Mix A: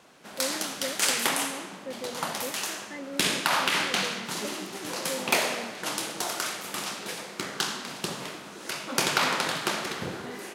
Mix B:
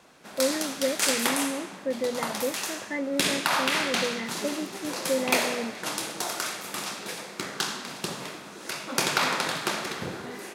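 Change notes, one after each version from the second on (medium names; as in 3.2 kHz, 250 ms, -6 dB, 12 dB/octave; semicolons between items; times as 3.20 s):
speech +9.0 dB; master: add band-stop 3 kHz, Q 21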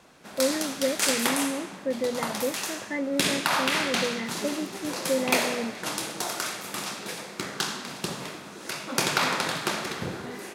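master: add bass shelf 160 Hz +5.5 dB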